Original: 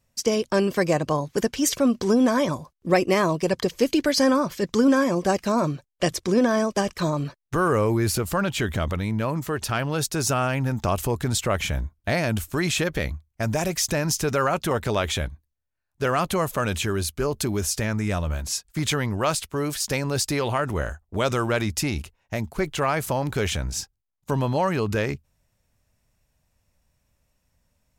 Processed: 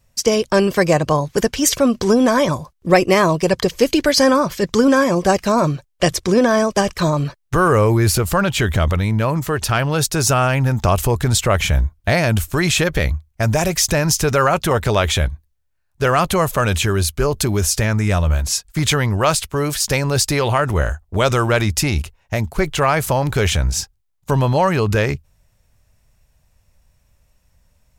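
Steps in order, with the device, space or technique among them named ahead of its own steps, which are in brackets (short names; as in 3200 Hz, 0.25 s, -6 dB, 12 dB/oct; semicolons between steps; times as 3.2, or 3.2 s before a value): low shelf boost with a cut just above (low shelf 83 Hz +7 dB; bell 260 Hz -4.5 dB 0.93 oct); gain +7.5 dB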